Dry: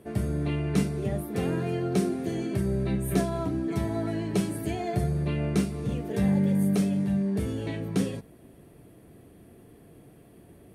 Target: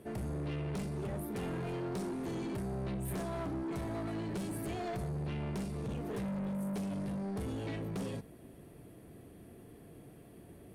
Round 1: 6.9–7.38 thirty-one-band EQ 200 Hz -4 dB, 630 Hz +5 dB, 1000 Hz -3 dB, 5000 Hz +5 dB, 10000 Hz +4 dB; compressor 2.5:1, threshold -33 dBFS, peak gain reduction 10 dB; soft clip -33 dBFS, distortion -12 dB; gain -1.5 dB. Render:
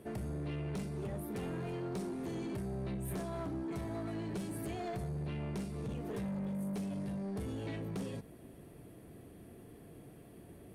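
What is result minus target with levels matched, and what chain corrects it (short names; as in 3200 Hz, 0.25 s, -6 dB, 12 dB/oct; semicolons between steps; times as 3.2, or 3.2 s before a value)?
compressor: peak gain reduction +4 dB
6.9–7.38 thirty-one-band EQ 200 Hz -4 dB, 630 Hz +5 dB, 1000 Hz -3 dB, 5000 Hz +5 dB, 10000 Hz +4 dB; compressor 2.5:1, threshold -26 dBFS, peak gain reduction 5.5 dB; soft clip -33 dBFS, distortion -8 dB; gain -1.5 dB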